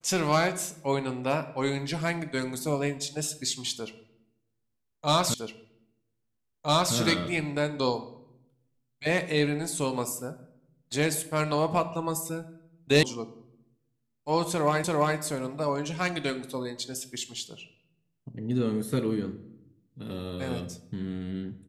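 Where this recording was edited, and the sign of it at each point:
5.34 s: repeat of the last 1.61 s
13.03 s: sound stops dead
14.84 s: repeat of the last 0.34 s

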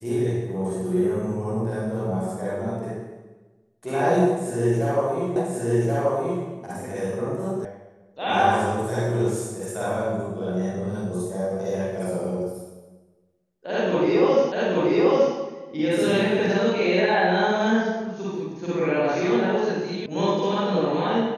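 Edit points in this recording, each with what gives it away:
5.36 s: repeat of the last 1.08 s
7.65 s: sound stops dead
14.52 s: repeat of the last 0.83 s
20.06 s: sound stops dead

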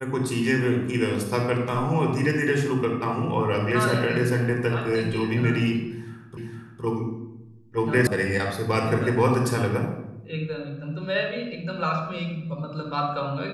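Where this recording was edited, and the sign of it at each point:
6.37 s: repeat of the last 0.46 s
8.07 s: sound stops dead

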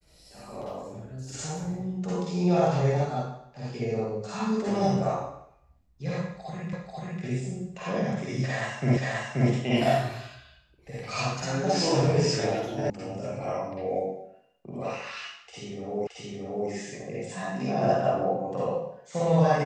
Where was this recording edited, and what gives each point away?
6.73 s: repeat of the last 0.49 s
8.97 s: repeat of the last 0.53 s
12.90 s: sound stops dead
16.07 s: repeat of the last 0.62 s

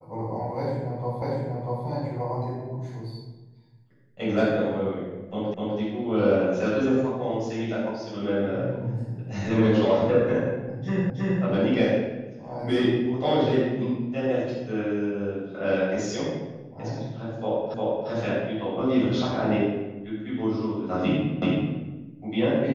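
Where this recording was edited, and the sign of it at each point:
1.22 s: repeat of the last 0.64 s
5.54 s: repeat of the last 0.25 s
11.10 s: repeat of the last 0.32 s
17.74 s: repeat of the last 0.35 s
21.42 s: repeat of the last 0.38 s

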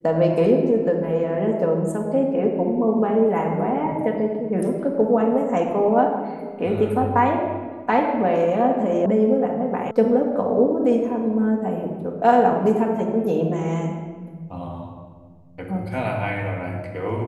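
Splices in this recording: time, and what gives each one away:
9.06 s: sound stops dead
9.91 s: sound stops dead

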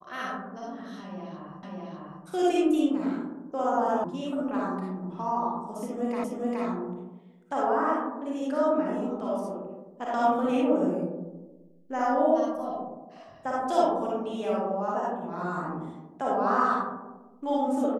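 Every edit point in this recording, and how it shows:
1.63 s: repeat of the last 0.6 s
4.04 s: sound stops dead
6.24 s: repeat of the last 0.42 s

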